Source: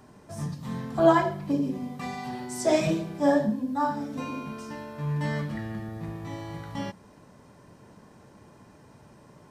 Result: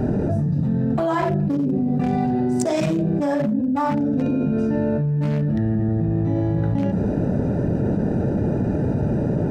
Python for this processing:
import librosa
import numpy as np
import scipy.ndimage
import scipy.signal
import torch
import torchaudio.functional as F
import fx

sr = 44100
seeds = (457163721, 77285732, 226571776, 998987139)

y = fx.wiener(x, sr, points=41)
y = fx.env_flatten(y, sr, amount_pct=100)
y = y * 10.0 ** (-6.0 / 20.0)